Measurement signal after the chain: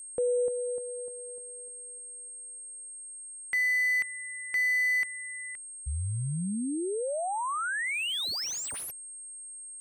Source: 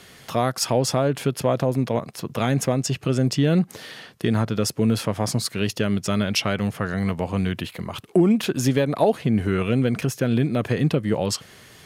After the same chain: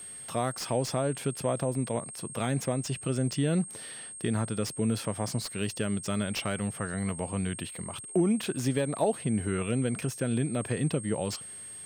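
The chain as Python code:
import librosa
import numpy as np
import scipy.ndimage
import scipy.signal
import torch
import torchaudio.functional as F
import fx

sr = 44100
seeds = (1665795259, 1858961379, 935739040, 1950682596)

y = x + 10.0 ** (-33.0 / 20.0) * np.sin(2.0 * np.pi * 8500.0 * np.arange(len(x)) / sr)
y = fx.slew_limit(y, sr, full_power_hz=330.0)
y = F.gain(torch.from_numpy(y), -8.0).numpy()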